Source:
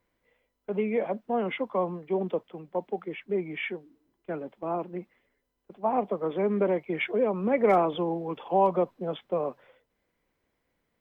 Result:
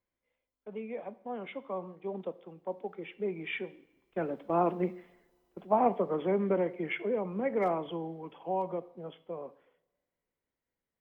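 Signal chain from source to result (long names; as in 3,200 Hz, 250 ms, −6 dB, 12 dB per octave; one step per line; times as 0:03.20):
source passing by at 0:05.01, 10 m/s, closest 5.3 metres
on a send: convolution reverb, pre-delay 3 ms, DRR 14 dB
on the sum: level +6 dB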